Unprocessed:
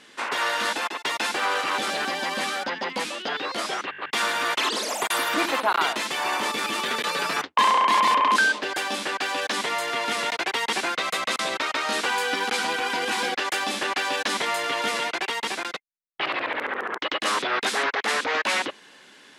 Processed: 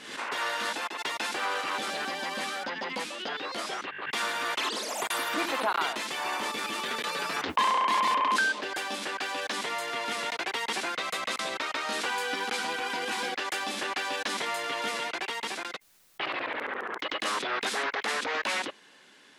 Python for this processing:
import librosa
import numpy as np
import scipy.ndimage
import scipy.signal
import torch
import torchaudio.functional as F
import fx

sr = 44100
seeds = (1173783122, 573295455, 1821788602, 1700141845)

y = fx.pre_swell(x, sr, db_per_s=69.0)
y = y * 10.0 ** (-6.0 / 20.0)